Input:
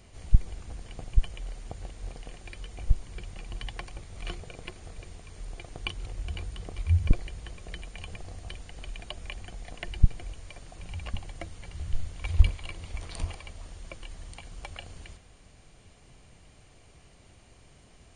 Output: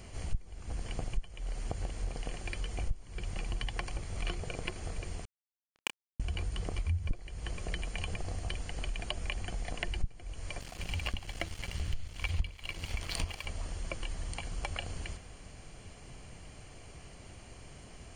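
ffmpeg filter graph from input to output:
-filter_complex "[0:a]asettb=1/sr,asplit=3[s0][s1][s2];[s0]atrim=end=5.254[s3];[s1]atrim=start=5.25:end=6.2,asetpts=PTS-STARTPTS,afade=t=in:d=0.004:c=qsin,afade=t=out:st=0.946:d=0.004:c=qsin,highpass=170,lowpass=3300,acrusher=bits=3:mix=0:aa=0.5,asplit=2[s4][s5];[s5]adelay=29,volume=0.473[s6];[s4][s6]amix=inputs=2:normalize=0,atrim=end_sample=41895[s7];[s2]atrim=start=6.196[s8];[s3][s7]acrossfade=d=0.004:c1=hsin:c2=qsin[s9];[s9][s8]acrossfade=d=0.004:c1=qsin:c2=hsin,asettb=1/sr,asplit=3[s10][s11][s12];[s10]atrim=end=10.604[s13];[s11]atrim=start=10.6:end=13.46,asetpts=PTS-STARTPTS,afade=t=in:d=0.004:c=qsin,afade=t=out:st=2.856:d=0.004:c=qsin,equalizer=f=3300:t=o:w=1.8:g=8,aeval=exprs='sgn(val(0))*max(abs(val(0))-0.00422,0)':c=same[s14];[s12]atrim=start=13.456[s15];[s13][s14]acrossfade=d=0.004:c1=hsin:c2=qsin[s16];[s16][s15]acrossfade=d=0.004:c1=qsin:c2=hsin,bandreject=f=3700:w=8.2,acompressor=threshold=0.0158:ratio=5,volume=1.88"

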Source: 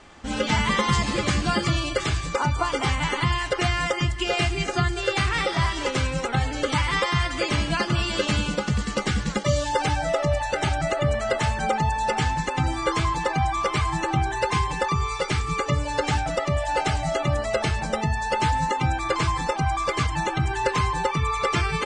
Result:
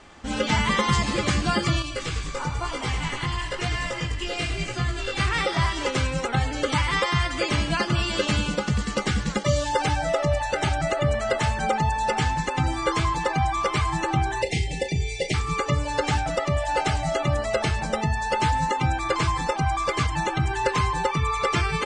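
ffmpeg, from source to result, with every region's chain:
-filter_complex "[0:a]asettb=1/sr,asplit=3[s0][s1][s2];[s0]atrim=end=1.824[s3];[s1]atrim=start=1.82:end=5.2,asetpts=PTS-STARTPTS,afade=t=in:d=0.004:c=qsin,afade=t=out:st=3.376:d=0.004:c=qsin,equalizer=f=640:t=o:w=2.6:g=-5,asplit=8[s4][s5][s6][s7][s8][s9][s10][s11];[s5]adelay=101,afreqshift=-42,volume=0.398[s12];[s6]adelay=202,afreqshift=-84,volume=0.219[s13];[s7]adelay=303,afreqshift=-126,volume=0.12[s14];[s8]adelay=404,afreqshift=-168,volume=0.0661[s15];[s9]adelay=505,afreqshift=-210,volume=0.0363[s16];[s10]adelay=606,afreqshift=-252,volume=0.02[s17];[s11]adelay=707,afreqshift=-294,volume=0.011[s18];[s4][s12][s13][s14][s15][s16][s17][s18]amix=inputs=8:normalize=0,atrim=end_sample=149058,flanger=delay=16:depth=4.3:speed=1[s19];[s2]atrim=start=5.196[s20];[s3][s19]acrossfade=d=0.004:c1=hsin:c2=qsin[s21];[s21][s20]acrossfade=d=0.004:c1=qsin:c2=hsin,asettb=1/sr,asplit=3[s22][s23][s24];[s22]atrim=end=14.424[s25];[s23]atrim=start=14.42:end=15.34,asetpts=PTS-STARTPTS,afade=t=in:d=0.004:c=qsin,afade=t=out:st=0.916:d=0.004:c=qsin,asuperstop=centerf=1200:order=12:qfactor=1.1,asplit=2[s26][s27];[s27]adelay=37,volume=0.266[s28];[s26][s28]amix=inputs=2:normalize=0,atrim=end_sample=40572[s29];[s24]atrim=start=15.336[s30];[s25][s29]acrossfade=d=0.004:c1=hsin:c2=qsin[s31];[s31][s30]acrossfade=d=0.004:c1=qsin:c2=hsin"

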